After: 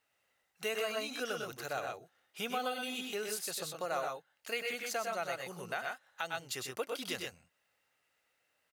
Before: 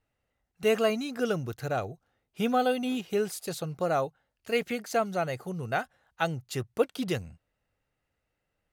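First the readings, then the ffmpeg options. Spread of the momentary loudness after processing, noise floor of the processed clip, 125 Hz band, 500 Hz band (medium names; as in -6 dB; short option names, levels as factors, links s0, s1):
6 LU, -79 dBFS, -18.0 dB, -10.0 dB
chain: -filter_complex "[0:a]highpass=f=1400:p=1,asplit=2[s0][s1];[s1]aecho=0:1:100|123:0.447|0.562[s2];[s0][s2]amix=inputs=2:normalize=0,alimiter=limit=0.0841:level=0:latency=1:release=209,acompressor=threshold=0.00158:ratio=1.5,volume=2.24"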